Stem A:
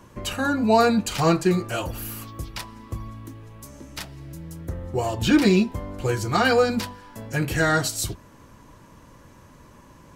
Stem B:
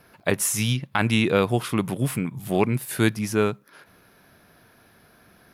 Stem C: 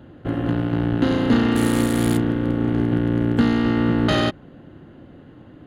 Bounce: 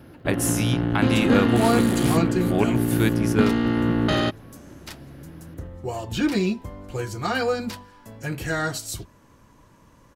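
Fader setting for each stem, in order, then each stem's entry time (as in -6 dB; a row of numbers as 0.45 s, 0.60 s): -5.0 dB, -2.5 dB, -2.5 dB; 0.90 s, 0.00 s, 0.00 s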